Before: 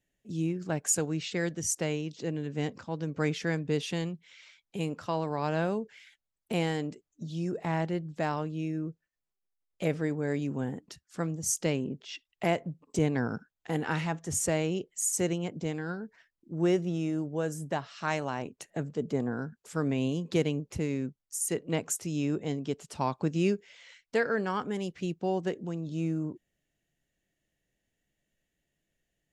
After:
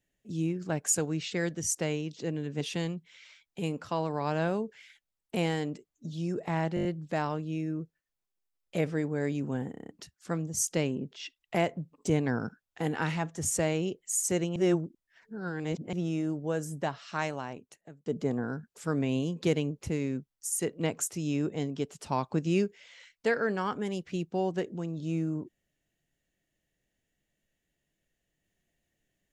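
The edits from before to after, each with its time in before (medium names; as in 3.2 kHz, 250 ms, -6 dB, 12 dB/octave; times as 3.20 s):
2.61–3.78 s: delete
7.92 s: stutter 0.02 s, 6 plays
10.78 s: stutter 0.03 s, 7 plays
15.45–16.82 s: reverse
17.97–18.95 s: fade out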